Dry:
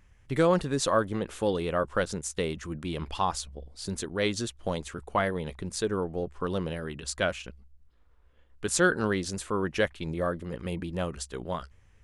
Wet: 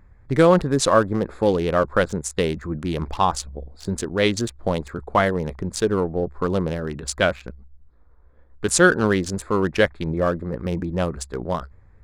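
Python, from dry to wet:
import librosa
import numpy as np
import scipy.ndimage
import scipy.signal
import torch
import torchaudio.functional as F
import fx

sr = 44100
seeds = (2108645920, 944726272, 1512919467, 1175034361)

y = fx.wiener(x, sr, points=15)
y = F.gain(torch.from_numpy(y), 8.5).numpy()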